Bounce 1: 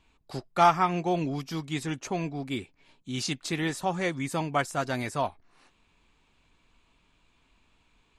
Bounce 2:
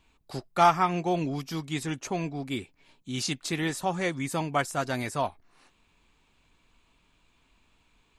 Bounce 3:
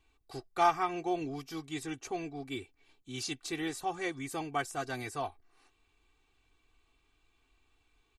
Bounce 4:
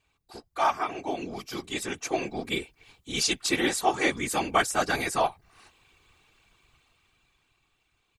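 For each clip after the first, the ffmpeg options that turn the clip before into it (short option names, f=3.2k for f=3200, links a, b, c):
-af "highshelf=f=10k:g=6.5"
-af "aecho=1:1:2.6:0.77,volume=-8.5dB"
-af "lowshelf=f=420:g=-8,dynaudnorm=f=250:g=13:m=11dB,afftfilt=real='hypot(re,im)*cos(2*PI*random(0))':imag='hypot(re,im)*sin(2*PI*random(1))':win_size=512:overlap=0.75,volume=8dB"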